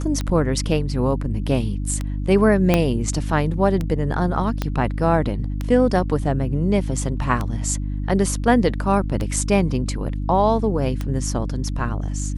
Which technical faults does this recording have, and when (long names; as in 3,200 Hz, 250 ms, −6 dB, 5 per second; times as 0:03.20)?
mains hum 50 Hz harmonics 6 −25 dBFS
scratch tick 33 1/3 rpm −12 dBFS
0:02.74: click −3 dBFS
0:04.62: click −9 dBFS